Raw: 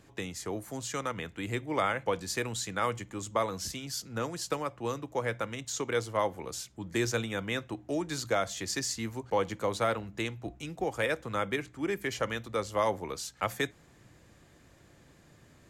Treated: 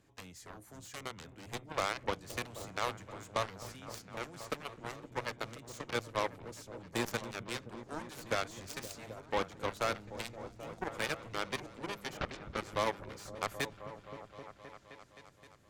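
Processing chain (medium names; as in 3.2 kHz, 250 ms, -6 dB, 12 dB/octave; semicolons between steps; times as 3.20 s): 12.17–12.57 s: LPC vocoder at 8 kHz whisper; Chebyshev shaper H 7 -13 dB, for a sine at -16 dBFS; delay with an opening low-pass 261 ms, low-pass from 200 Hz, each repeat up 1 oct, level -6 dB; trim -5 dB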